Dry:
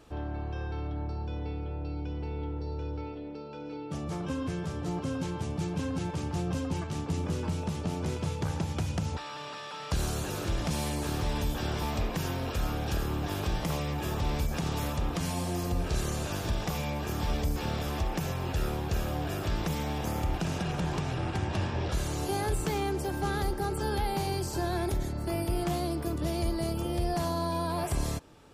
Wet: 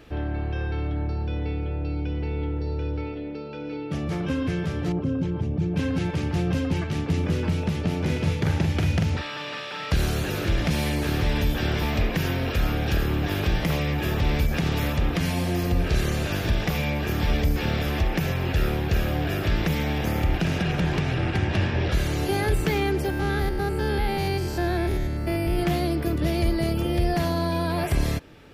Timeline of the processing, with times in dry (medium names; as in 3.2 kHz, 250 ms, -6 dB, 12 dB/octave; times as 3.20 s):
4.92–5.76 s: resonances exaggerated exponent 1.5
7.98–9.90 s: doubling 44 ms -5 dB
23.10–25.59 s: spectrogram pixelated in time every 100 ms
whole clip: graphic EQ 1/2/8 kHz -7/+6/-10 dB; trim +7.5 dB